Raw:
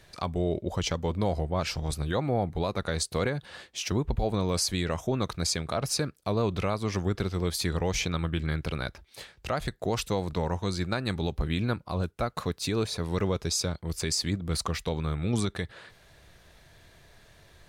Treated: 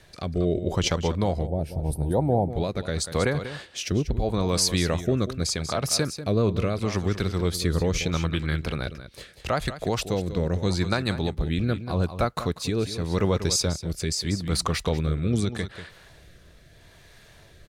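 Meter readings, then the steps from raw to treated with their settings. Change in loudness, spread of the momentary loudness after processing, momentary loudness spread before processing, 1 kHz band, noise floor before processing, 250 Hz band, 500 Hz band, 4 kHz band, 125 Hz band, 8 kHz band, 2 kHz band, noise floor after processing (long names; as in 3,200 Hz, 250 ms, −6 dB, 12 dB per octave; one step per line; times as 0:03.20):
+4.0 dB, 6 LU, 5 LU, +2.0 dB, −58 dBFS, +4.0 dB, +4.0 dB, +3.0 dB, +4.5 dB, +3.5 dB, +3.0 dB, −52 dBFS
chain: single-tap delay 191 ms −12 dB
rotating-speaker cabinet horn 0.8 Hz
gain on a spectral selection 0:01.47–0:02.50, 990–8,300 Hz −18 dB
level +5.5 dB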